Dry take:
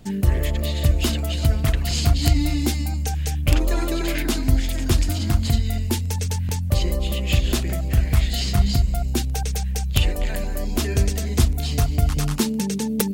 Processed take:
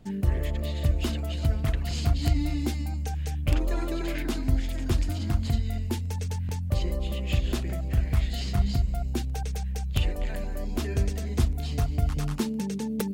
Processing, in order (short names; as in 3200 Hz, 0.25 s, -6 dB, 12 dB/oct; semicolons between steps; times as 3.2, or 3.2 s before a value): high shelf 3400 Hz -8 dB; gain -6 dB